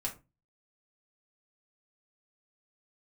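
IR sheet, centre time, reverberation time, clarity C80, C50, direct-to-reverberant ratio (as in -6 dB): 13 ms, not exponential, 20.0 dB, 13.0 dB, -2.5 dB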